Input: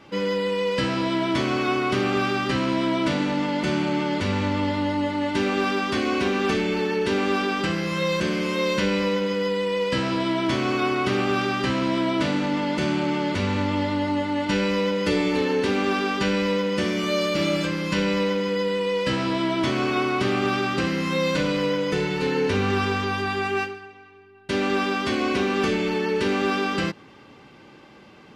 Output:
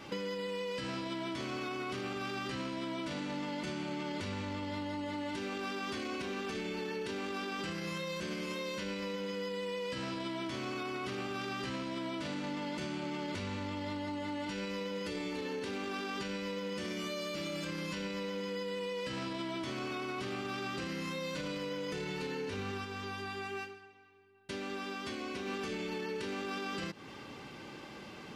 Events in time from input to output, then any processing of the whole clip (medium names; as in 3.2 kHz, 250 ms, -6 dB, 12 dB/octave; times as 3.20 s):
22.67–25.65 s: dip -14.5 dB, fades 0.20 s
whole clip: treble shelf 4.6 kHz +7.5 dB; peak limiter -20.5 dBFS; compression, threshold -36 dBFS